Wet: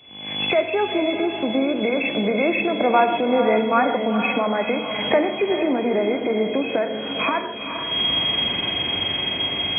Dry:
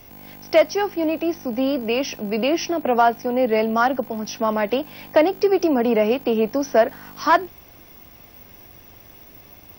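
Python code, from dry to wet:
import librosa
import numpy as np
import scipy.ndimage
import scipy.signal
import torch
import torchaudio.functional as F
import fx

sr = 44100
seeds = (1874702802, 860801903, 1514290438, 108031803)

y = fx.freq_compress(x, sr, knee_hz=2000.0, ratio=4.0)
y = fx.doppler_pass(y, sr, speed_mps=8, closest_m=12.0, pass_at_s=3.15)
y = fx.recorder_agc(y, sr, target_db=-15.0, rise_db_per_s=48.0, max_gain_db=30)
y = scipy.signal.sosfilt(scipy.signal.butter(2, 120.0, 'highpass', fs=sr, output='sos'), y)
y = fx.echo_diffused(y, sr, ms=454, feedback_pct=42, wet_db=-8)
y = fx.rev_gated(y, sr, seeds[0], gate_ms=180, shape='flat', drr_db=8.0)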